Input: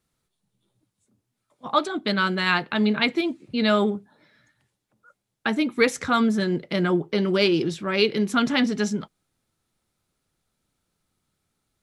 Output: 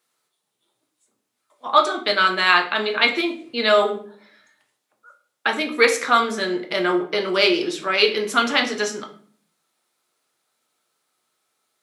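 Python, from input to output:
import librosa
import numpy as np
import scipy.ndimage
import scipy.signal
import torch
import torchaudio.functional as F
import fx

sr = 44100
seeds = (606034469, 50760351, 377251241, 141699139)

y = scipy.signal.sosfilt(scipy.signal.butter(2, 530.0, 'highpass', fs=sr, output='sos'), x)
y = fx.room_shoebox(y, sr, seeds[0], volume_m3=55.0, walls='mixed', distance_m=0.44)
y = F.gain(torch.from_numpy(y), 5.0).numpy()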